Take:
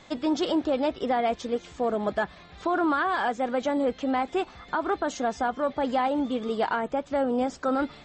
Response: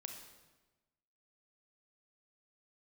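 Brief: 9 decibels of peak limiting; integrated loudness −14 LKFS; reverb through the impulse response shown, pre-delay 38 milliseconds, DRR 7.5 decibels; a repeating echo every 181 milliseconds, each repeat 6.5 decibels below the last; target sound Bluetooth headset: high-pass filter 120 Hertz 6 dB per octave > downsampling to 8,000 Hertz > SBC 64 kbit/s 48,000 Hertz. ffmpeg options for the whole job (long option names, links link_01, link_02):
-filter_complex "[0:a]alimiter=level_in=0.5dB:limit=-24dB:level=0:latency=1,volume=-0.5dB,aecho=1:1:181|362|543|724|905|1086:0.473|0.222|0.105|0.0491|0.0231|0.0109,asplit=2[link_01][link_02];[1:a]atrim=start_sample=2205,adelay=38[link_03];[link_02][link_03]afir=irnorm=-1:irlink=0,volume=-4dB[link_04];[link_01][link_04]amix=inputs=2:normalize=0,highpass=frequency=120:poles=1,aresample=8000,aresample=44100,volume=18dB" -ar 48000 -c:a sbc -b:a 64k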